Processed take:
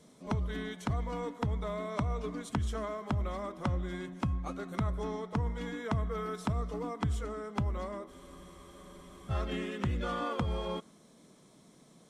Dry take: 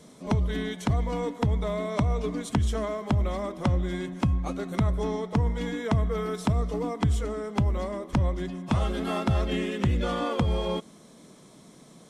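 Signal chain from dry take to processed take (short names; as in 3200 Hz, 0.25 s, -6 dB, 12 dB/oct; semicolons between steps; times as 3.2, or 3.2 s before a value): dynamic EQ 1300 Hz, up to +6 dB, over -49 dBFS, Q 1.8; spectral freeze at 8.11, 1.20 s; gain -8 dB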